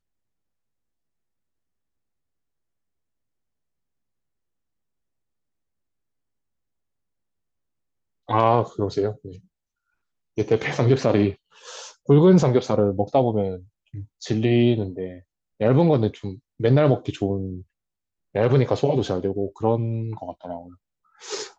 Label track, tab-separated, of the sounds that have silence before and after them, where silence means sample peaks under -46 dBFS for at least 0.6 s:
8.280000	9.400000	sound
10.370000	17.630000	sound